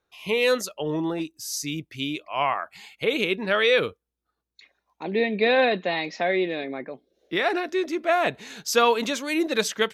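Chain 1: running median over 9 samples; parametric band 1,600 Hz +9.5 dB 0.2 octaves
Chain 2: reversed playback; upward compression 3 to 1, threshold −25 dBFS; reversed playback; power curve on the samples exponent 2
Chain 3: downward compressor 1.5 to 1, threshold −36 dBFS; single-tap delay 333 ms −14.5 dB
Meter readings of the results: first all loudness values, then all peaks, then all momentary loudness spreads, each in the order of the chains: −24.5, −32.0, −30.5 LKFS; −6.5, −7.5, −14.5 dBFS; 14, 19, 9 LU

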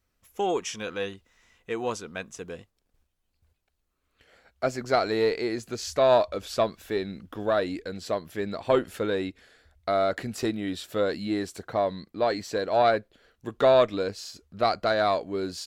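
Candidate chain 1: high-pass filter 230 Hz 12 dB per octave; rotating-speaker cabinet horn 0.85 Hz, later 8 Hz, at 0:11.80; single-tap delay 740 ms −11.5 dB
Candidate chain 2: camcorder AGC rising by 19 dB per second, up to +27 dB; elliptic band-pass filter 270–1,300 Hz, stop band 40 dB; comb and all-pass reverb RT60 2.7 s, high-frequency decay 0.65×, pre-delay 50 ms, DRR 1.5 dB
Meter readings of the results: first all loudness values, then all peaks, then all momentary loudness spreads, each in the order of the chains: −30.5, −24.0 LKFS; −10.0, −6.0 dBFS; 13, 11 LU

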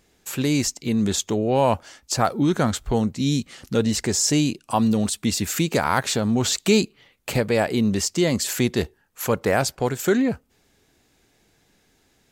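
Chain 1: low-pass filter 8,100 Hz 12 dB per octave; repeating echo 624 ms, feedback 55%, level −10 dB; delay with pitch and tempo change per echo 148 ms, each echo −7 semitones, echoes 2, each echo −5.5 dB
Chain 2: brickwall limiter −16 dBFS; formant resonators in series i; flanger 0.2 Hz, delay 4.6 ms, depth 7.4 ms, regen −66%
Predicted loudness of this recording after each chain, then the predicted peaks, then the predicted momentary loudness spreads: −21.5, −37.5 LKFS; −4.5, −21.5 dBFS; 7, 12 LU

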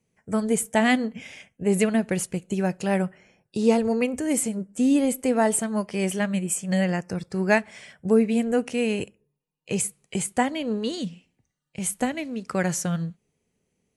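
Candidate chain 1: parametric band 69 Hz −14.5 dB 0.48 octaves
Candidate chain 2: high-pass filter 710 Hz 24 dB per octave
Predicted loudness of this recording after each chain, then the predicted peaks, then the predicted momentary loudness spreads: −25.0, −30.5 LKFS; −7.5, −8.0 dBFS; 11, 16 LU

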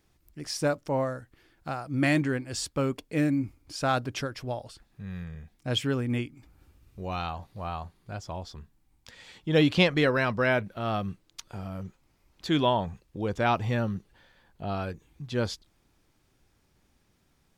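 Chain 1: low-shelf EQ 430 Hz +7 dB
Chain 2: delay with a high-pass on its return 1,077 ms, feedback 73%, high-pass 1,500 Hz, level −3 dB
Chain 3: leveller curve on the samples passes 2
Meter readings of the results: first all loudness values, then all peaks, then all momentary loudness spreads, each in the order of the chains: −25.5, −29.5, −22.5 LKFS; −4.0, −7.0, −7.0 dBFS; 16, 15, 16 LU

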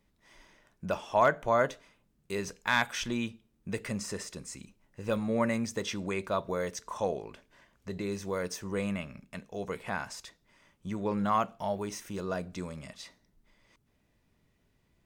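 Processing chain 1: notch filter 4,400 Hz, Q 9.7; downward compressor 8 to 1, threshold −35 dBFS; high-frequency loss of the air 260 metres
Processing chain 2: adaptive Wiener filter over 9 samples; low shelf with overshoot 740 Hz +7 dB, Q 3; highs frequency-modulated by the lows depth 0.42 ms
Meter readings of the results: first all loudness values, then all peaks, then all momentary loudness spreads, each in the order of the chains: −42.5, −25.0 LKFS; −21.0, −5.5 dBFS; 11, 19 LU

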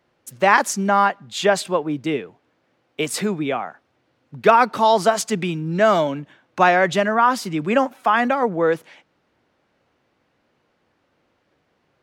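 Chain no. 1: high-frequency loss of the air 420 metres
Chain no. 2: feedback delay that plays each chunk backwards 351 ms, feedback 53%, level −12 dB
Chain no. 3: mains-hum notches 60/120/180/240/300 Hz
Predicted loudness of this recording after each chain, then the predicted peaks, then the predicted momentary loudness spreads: −21.0, −19.0, −19.5 LKFS; −4.5, −2.5, −3.0 dBFS; 10, 19, 11 LU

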